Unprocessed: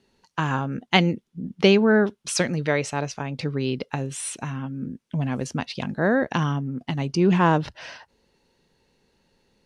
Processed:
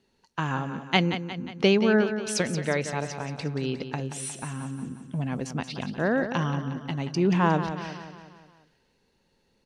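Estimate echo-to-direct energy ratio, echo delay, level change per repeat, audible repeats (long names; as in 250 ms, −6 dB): −8.5 dB, 179 ms, −5.5 dB, 5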